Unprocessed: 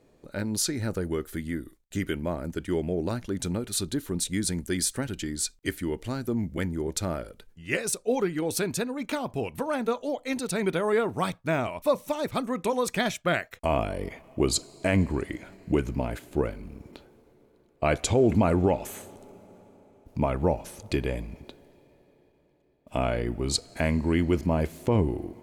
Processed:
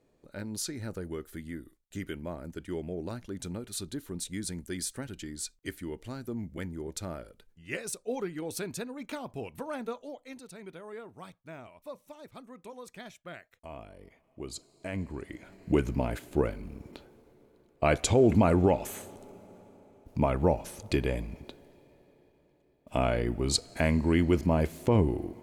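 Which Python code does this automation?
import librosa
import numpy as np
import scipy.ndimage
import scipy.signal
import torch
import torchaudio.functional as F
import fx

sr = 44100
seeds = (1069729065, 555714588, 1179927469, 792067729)

y = fx.gain(x, sr, db=fx.line((9.81, -8.0), (10.57, -19.0), (14.12, -19.0), (15.21, -10.0), (15.76, -0.5)))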